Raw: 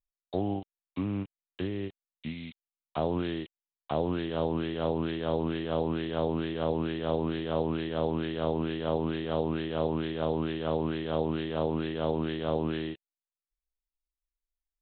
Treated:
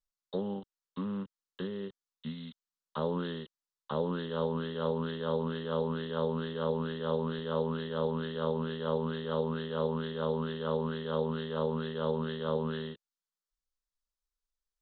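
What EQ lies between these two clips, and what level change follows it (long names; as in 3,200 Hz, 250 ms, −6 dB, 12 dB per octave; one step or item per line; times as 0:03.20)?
high-frequency loss of the air 110 metres
high-shelf EQ 2,200 Hz +11.5 dB
phaser with its sweep stopped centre 470 Hz, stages 8
0.0 dB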